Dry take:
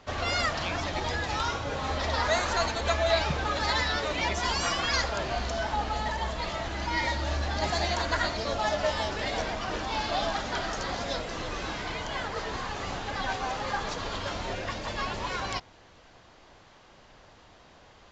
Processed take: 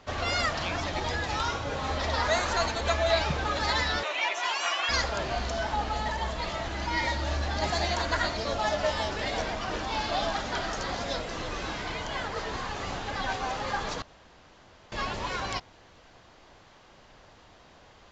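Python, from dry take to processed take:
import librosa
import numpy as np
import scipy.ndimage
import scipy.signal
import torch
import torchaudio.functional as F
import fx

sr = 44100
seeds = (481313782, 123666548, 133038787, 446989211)

y = fx.cabinet(x, sr, low_hz=440.0, low_slope=24, high_hz=6900.0, hz=(480.0, 2600.0, 4800.0), db=(-9, 6, -8), at=(4.03, 4.89))
y = fx.edit(y, sr, fx.room_tone_fill(start_s=14.02, length_s=0.9), tone=tone)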